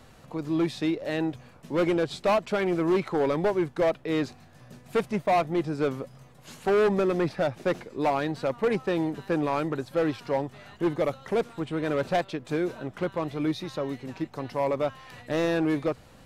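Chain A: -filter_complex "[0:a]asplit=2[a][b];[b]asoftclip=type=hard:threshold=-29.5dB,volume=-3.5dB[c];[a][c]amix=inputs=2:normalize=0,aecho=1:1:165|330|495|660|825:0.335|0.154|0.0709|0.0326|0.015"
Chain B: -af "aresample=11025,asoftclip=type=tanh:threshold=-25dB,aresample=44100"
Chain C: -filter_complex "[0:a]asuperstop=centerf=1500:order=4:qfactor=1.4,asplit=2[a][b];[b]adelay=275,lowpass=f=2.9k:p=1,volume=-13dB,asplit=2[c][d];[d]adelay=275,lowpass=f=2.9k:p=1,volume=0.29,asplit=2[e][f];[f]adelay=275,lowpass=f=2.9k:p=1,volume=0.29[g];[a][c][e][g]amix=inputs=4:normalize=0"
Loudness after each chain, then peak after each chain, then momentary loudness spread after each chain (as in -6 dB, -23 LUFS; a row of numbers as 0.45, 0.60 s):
-25.0, -32.0, -28.0 LUFS; -13.5, -23.0, -14.0 dBFS; 8, 7, 9 LU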